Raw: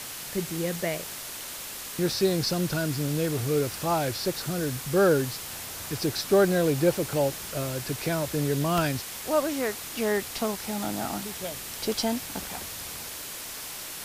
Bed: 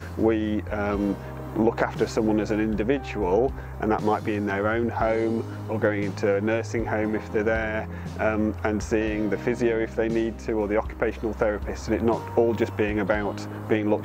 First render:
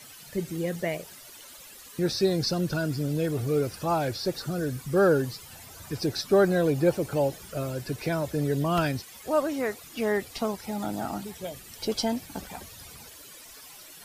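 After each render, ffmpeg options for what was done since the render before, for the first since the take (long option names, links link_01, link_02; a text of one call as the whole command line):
ffmpeg -i in.wav -af "afftdn=noise_reduction=14:noise_floor=-38" out.wav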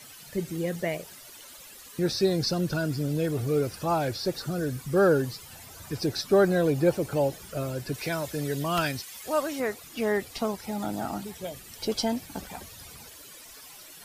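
ffmpeg -i in.wav -filter_complex "[0:a]asettb=1/sr,asplit=3[link_01][link_02][link_03];[link_01]atrim=end=7.944[link_04];[link_02]atrim=start=7.94:end=9.6,asetpts=PTS-STARTPTS,afade=type=in:duration=0.004:curve=qsin,afade=type=out:start_time=1.656:duration=0.004:curve=qsin,tiltshelf=frequency=1100:gain=-4.5[link_05];[link_03]atrim=start=9.596[link_06];[link_04][link_05]acrossfade=duration=0.004:curve1=hsin:curve2=qsin[link_07];[link_07][link_06]acrossfade=duration=0.004:curve1=qsin:curve2=hsin" out.wav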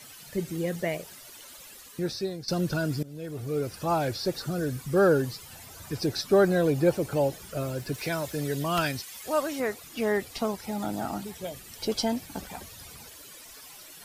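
ffmpeg -i in.wav -filter_complex "[0:a]asettb=1/sr,asplit=3[link_01][link_02][link_03];[link_01]atrim=end=7.614[link_04];[link_02]atrim=start=7.61:end=8.47,asetpts=PTS-STARTPTS,afade=type=in:duration=0.004:curve=qsin,afade=type=out:start_time=0.856:duration=0.004:curve=qsin,aeval=exprs='val(0)*gte(abs(val(0)),0.00316)':channel_layout=same[link_05];[link_03]atrim=start=8.466[link_06];[link_04][link_05]acrossfade=duration=0.004:curve1=hsin:curve2=qsin[link_07];[link_07][link_06]acrossfade=duration=0.004:curve1=qsin:curve2=hsin,asplit=3[link_08][link_09][link_10];[link_08]atrim=end=2.48,asetpts=PTS-STARTPTS,afade=type=out:start_time=1.74:duration=0.74:silence=0.149624[link_11];[link_09]atrim=start=2.48:end=3.03,asetpts=PTS-STARTPTS,afade=type=in:duration=0.004:curve=hsin:silence=0.149624,afade=type=out:start_time=0.546:duration=0.004:curve=hsin:silence=0.105925[link_12];[link_10]atrim=start=3.03,asetpts=PTS-STARTPTS,afade=type=in:duration=0.9:silence=0.105925[link_13];[link_11][link_12][link_13]concat=n=3:v=0:a=1" out.wav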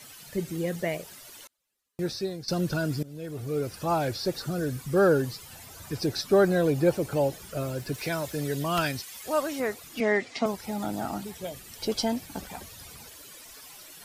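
ffmpeg -i in.wav -filter_complex "[0:a]asettb=1/sr,asplit=3[link_01][link_02][link_03];[link_01]atrim=end=1.474[link_04];[link_02]atrim=start=1.47:end=2.07,asetpts=PTS-STARTPTS,afade=type=in:duration=0.004:curve=qsin,afade=type=out:start_time=0.596:duration=0.004:curve=qsin,agate=range=-34dB:threshold=-38dB:ratio=16:release=100:detection=peak[link_05];[link_03]atrim=start=2.066[link_06];[link_04][link_05]acrossfade=duration=0.004:curve1=hsin:curve2=qsin[link_07];[link_07][link_06]acrossfade=duration=0.004:curve1=qsin:curve2=hsin,asettb=1/sr,asplit=3[link_08][link_09][link_10];[link_08]atrim=end=10.004[link_11];[link_09]atrim=start=10:end=10.46,asetpts=PTS-STARTPTS,afade=type=in:duration=0.004:curve=qsin,afade=type=out:start_time=0.456:duration=0.004:curve=qsin,highpass=180,equalizer=frequency=250:width_type=q:width=4:gain=6,equalizer=frequency=660:width_type=q:width=4:gain=4,equalizer=frequency=2100:width_type=q:width=4:gain=10,lowpass=frequency=7100:width=0.5412,lowpass=frequency=7100:width=1.3066[link_12];[link_10]atrim=start=10.456[link_13];[link_11][link_12]acrossfade=duration=0.004:curve1=hsin:curve2=qsin[link_14];[link_14][link_13]acrossfade=duration=0.004:curve1=qsin:curve2=hsin" out.wav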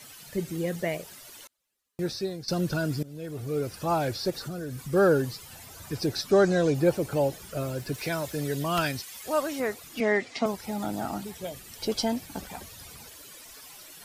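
ffmpeg -i in.wav -filter_complex "[0:a]asettb=1/sr,asplit=3[link_01][link_02][link_03];[link_01]atrim=end=4.304[link_04];[link_02]atrim=start=4.3:end=4.93,asetpts=PTS-STARTPTS,afade=type=in:duration=0.004:curve=qsin,afade=type=out:start_time=0.626:duration=0.004:curve=qsin,acompressor=threshold=-32dB:ratio=4:attack=3.2:release=140:knee=1:detection=peak[link_05];[link_03]atrim=start=4.926[link_06];[link_04][link_05]acrossfade=duration=0.004:curve1=hsin:curve2=qsin[link_07];[link_07][link_06]acrossfade=duration=0.004:curve1=qsin:curve2=hsin,asettb=1/sr,asplit=3[link_08][link_09][link_10];[link_08]atrim=end=6.314[link_11];[link_09]atrim=start=6.31:end=6.75,asetpts=PTS-STARTPTS,afade=type=in:duration=0.004:curve=qsin,afade=type=out:start_time=0.436:duration=0.004:curve=qsin,lowpass=frequency=6500:width_type=q:width=2.2[link_12];[link_10]atrim=start=6.746[link_13];[link_11][link_12]acrossfade=duration=0.004:curve1=hsin:curve2=qsin[link_14];[link_14][link_13]acrossfade=duration=0.004:curve1=qsin:curve2=hsin" out.wav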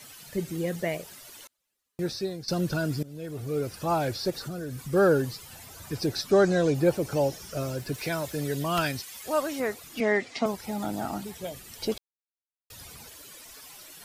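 ffmpeg -i in.wav -filter_complex "[0:a]asettb=1/sr,asplit=3[link_01][link_02][link_03];[link_01]atrim=end=7.064[link_04];[link_02]atrim=start=7.06:end=7.76,asetpts=PTS-STARTPTS,afade=type=in:duration=0.004:curve=qsin,afade=type=out:start_time=0.696:duration=0.004:curve=qsin,equalizer=frequency=5600:width=3.7:gain=9[link_05];[link_03]atrim=start=7.756[link_06];[link_04][link_05]acrossfade=duration=0.004:curve1=hsin:curve2=qsin[link_07];[link_07][link_06]acrossfade=duration=0.004:curve1=qsin:curve2=hsin,asplit=3[link_08][link_09][link_10];[link_08]atrim=end=11.98,asetpts=PTS-STARTPTS,afade=type=out:start_time=11.976:duration=0.004:curve=hsin[link_11];[link_09]atrim=start=11.98:end=12.7,asetpts=PTS-STARTPTS,volume=0[link_12];[link_10]atrim=start=12.7,asetpts=PTS-STARTPTS,afade=type=in:duration=0.004:curve=hsin[link_13];[link_11][link_12][link_13]concat=n=3:v=0:a=1" out.wav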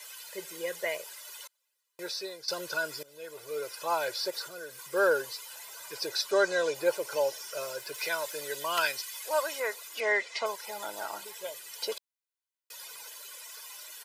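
ffmpeg -i in.wav -af "highpass=720,aecho=1:1:2:0.69" out.wav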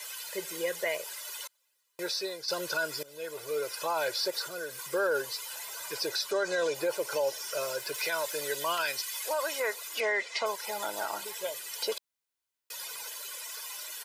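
ffmpeg -i in.wav -filter_complex "[0:a]asplit=2[link_01][link_02];[link_02]acompressor=threshold=-37dB:ratio=6,volume=-2.5dB[link_03];[link_01][link_03]amix=inputs=2:normalize=0,alimiter=limit=-21dB:level=0:latency=1:release=22" out.wav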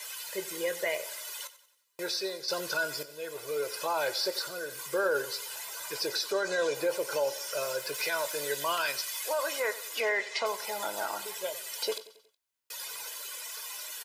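ffmpeg -i in.wav -filter_complex "[0:a]asplit=2[link_01][link_02];[link_02]adelay=21,volume=-13dB[link_03];[link_01][link_03]amix=inputs=2:normalize=0,aecho=1:1:92|184|276|368:0.158|0.0729|0.0335|0.0154" out.wav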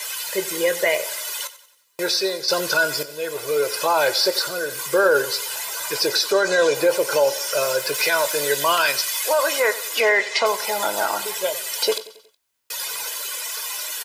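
ffmpeg -i in.wav -af "volume=11.5dB" out.wav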